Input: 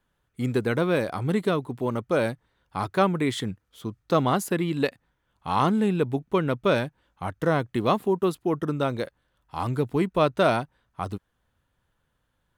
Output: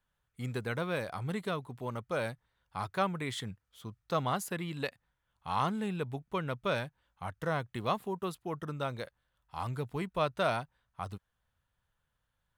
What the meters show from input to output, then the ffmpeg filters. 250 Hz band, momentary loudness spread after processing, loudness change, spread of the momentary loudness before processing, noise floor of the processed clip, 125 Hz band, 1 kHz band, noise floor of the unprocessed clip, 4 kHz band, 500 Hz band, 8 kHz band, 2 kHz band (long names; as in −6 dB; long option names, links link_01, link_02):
−13.0 dB, 13 LU, −10.0 dB, 13 LU, −82 dBFS, −9.0 dB, −7.5 dB, −75 dBFS, −6.5 dB, −11.0 dB, −6.5 dB, −7.0 dB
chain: -af "equalizer=frequency=310:width_type=o:width=1.3:gain=-9.5,volume=-6.5dB"